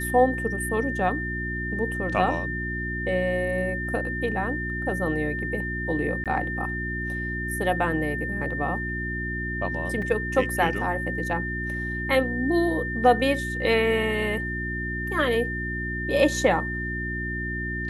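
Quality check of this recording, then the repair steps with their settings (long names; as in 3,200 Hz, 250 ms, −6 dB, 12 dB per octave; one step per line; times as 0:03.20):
mains hum 60 Hz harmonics 6 −32 dBFS
whistle 1,800 Hz −30 dBFS
0:06.24–0:06.26: drop-out 17 ms
0:10.02: drop-out 2.8 ms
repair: hum removal 60 Hz, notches 6
notch filter 1,800 Hz, Q 30
repair the gap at 0:06.24, 17 ms
repair the gap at 0:10.02, 2.8 ms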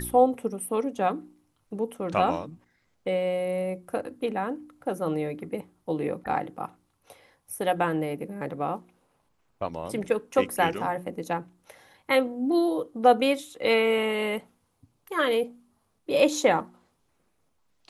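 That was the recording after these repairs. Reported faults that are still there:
none of them is left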